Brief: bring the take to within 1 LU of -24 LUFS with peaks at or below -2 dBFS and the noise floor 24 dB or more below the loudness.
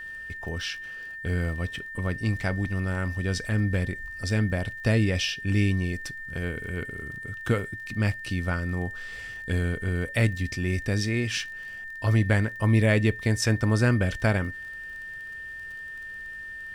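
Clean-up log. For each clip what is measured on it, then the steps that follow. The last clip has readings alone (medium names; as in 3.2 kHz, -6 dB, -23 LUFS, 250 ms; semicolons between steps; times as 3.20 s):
tick rate 27 per s; steady tone 1.8 kHz; tone level -36 dBFS; loudness -27.5 LUFS; peak level -9.0 dBFS; loudness target -24.0 LUFS
-> de-click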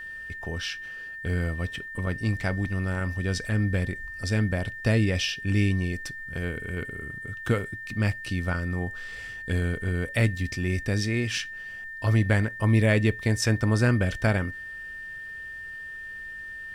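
tick rate 0 per s; steady tone 1.8 kHz; tone level -36 dBFS
-> band-stop 1.8 kHz, Q 30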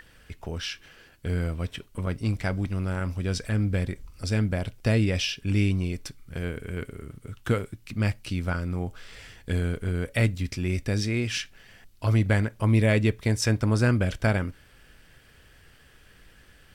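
steady tone not found; loudness -27.5 LUFS; peak level -9.0 dBFS; loudness target -24.0 LUFS
-> trim +3.5 dB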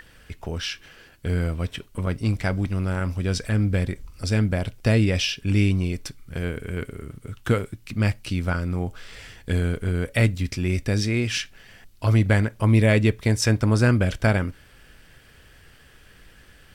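loudness -24.0 LUFS; peak level -5.5 dBFS; noise floor -52 dBFS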